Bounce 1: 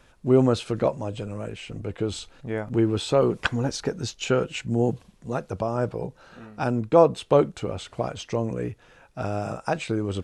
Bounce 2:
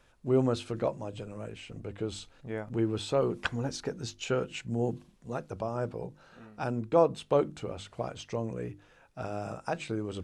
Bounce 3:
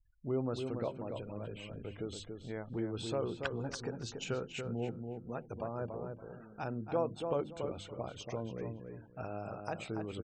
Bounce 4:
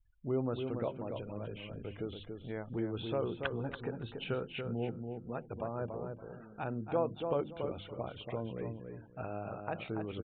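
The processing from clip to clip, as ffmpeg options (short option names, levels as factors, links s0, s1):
-af "bandreject=f=50:t=h:w=6,bandreject=f=100:t=h:w=6,bandreject=f=150:t=h:w=6,bandreject=f=200:t=h:w=6,bandreject=f=250:t=h:w=6,bandreject=f=300:t=h:w=6,bandreject=f=350:t=h:w=6,volume=0.447"
-filter_complex "[0:a]acompressor=threshold=0.0126:ratio=1.5,afftfilt=real='re*gte(hypot(re,im),0.00316)':imag='im*gte(hypot(re,im),0.00316)':win_size=1024:overlap=0.75,asplit=2[s0][s1];[s1]adelay=283,lowpass=f=1900:p=1,volume=0.531,asplit=2[s2][s3];[s3]adelay=283,lowpass=f=1900:p=1,volume=0.23,asplit=2[s4][s5];[s5]adelay=283,lowpass=f=1900:p=1,volume=0.23[s6];[s0][s2][s4][s6]amix=inputs=4:normalize=0,volume=0.708"
-af "aresample=8000,aresample=44100,volume=1.12"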